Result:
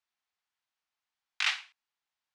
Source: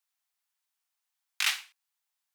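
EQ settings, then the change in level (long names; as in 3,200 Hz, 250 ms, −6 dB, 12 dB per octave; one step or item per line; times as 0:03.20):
high-frequency loss of the air 130 metres
+1.5 dB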